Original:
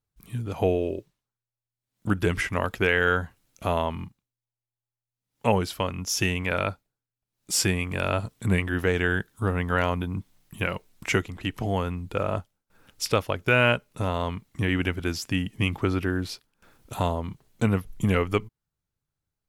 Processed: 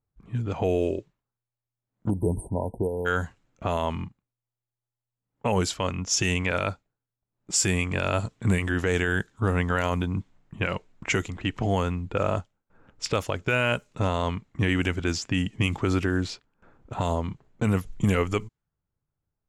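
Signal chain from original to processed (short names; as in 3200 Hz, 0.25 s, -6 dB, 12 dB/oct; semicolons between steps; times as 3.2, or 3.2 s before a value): low-pass opened by the level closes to 1200 Hz, open at -19 dBFS; bell 7200 Hz +13 dB 0.55 oct; limiter -16 dBFS, peak gain reduction 11 dB; spectral delete 2.1–3.06, 1000–8200 Hz; gain +2.5 dB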